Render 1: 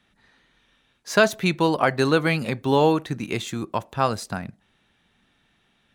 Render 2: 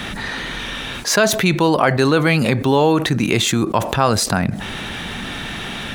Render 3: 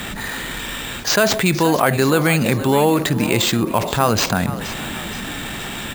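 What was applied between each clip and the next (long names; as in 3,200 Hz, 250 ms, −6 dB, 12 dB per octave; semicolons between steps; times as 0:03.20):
envelope flattener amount 70%; level +1 dB
high-shelf EQ 11,000 Hz +6.5 dB; echo with shifted repeats 473 ms, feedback 49%, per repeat +52 Hz, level −14 dB; bad sample-rate conversion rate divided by 4×, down none, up hold; level −1 dB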